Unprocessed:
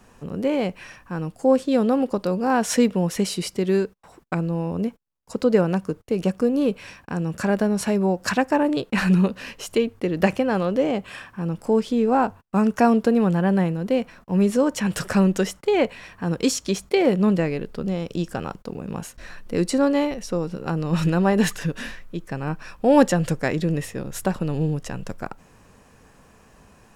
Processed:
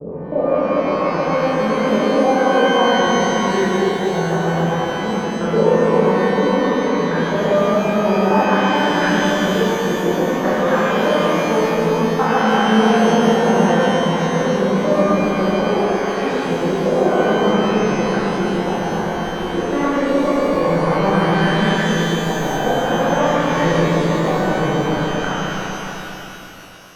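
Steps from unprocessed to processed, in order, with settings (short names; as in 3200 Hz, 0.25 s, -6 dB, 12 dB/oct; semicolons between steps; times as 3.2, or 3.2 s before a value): slices in reverse order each 0.106 s, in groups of 3; gate -41 dBFS, range -15 dB; low shelf 340 Hz -7 dB; compressor 2.5:1, threshold -29 dBFS, peak gain reduction 11.5 dB; LFO low-pass saw up 0.55 Hz 520–1800 Hz; repeats that get brighter 0.138 s, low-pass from 400 Hz, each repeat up 1 oct, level -3 dB; shimmer reverb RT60 2.9 s, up +12 st, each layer -8 dB, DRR -9 dB; gain +1 dB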